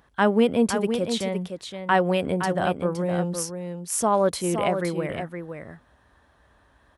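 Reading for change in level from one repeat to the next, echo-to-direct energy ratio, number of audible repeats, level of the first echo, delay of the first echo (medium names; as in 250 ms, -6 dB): no regular repeats, -7.5 dB, 1, -7.5 dB, 515 ms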